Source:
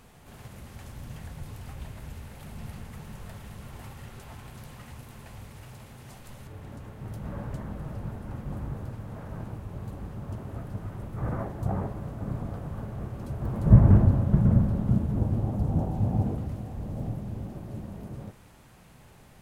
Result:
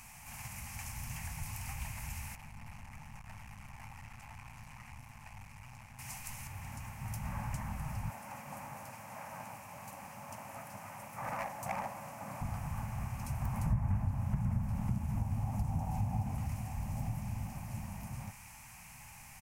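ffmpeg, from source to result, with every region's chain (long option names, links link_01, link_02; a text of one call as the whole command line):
ffmpeg -i in.wav -filter_complex "[0:a]asettb=1/sr,asplit=3[link_01][link_02][link_03];[link_01]atrim=end=2.354[link_04];[link_02]atrim=start=2.35:end=5.99,asetpts=PTS-STARTPTS,afade=type=in:duration=0.004:curve=qsin,afade=type=out:start_time=3.636:duration=0.004:curve=qsin,lowpass=frequency=2000:poles=1,aeval=exprs='(tanh(141*val(0)+0.75)-tanh(0.75))/141':channel_layout=same[link_05];[link_03]atrim=start=5.986[link_06];[link_04][link_05]acrossfade=duration=0.004:curve1=hsin:curve2=qsin[link_07];[link_07][link_06]acrossfade=duration=0.004:curve1=qsin:curve2=hsin,asettb=1/sr,asplit=3[link_08][link_09][link_10];[link_08]atrim=end=8.104[link_11];[link_09]atrim=start=8.1:end=12.41,asetpts=PTS-STARTPTS,afade=type=in:duration=0.004:curve=qsin,afade=type=out:start_time=4.306:duration=0.004:curve=qsin,highpass=280,equalizer=frequency=560:width_type=o:width=0.38:gain=9,asoftclip=type=hard:threshold=-28.5dB[link_12];[link_10]atrim=start=12.406[link_13];[link_11][link_12]acrossfade=duration=0.004:curve1=hsin:curve2=qsin[link_14];[link_14][link_13]acrossfade=duration=0.004:curve1=qsin:curve2=hsin,firequalizer=gain_entry='entry(100,0);entry(250,-6);entry(370,-23);entry(830,7);entry(1400,0);entry(2400,13);entry(3500,-4);entry(5500,12)':delay=0.05:min_phase=1,acompressor=threshold=-29dB:ratio=4,volume=-2dB" out.wav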